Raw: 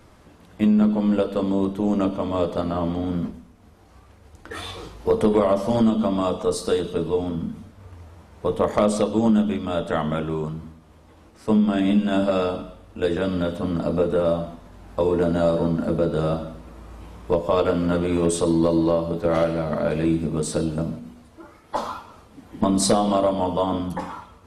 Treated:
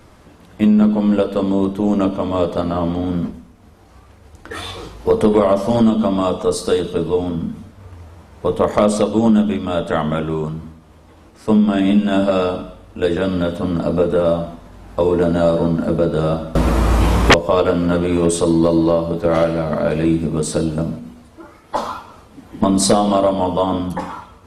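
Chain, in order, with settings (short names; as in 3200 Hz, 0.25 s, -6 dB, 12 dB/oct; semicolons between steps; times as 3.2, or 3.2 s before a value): 16.55–17.34 sine folder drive 18 dB, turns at -8.5 dBFS; gain +5 dB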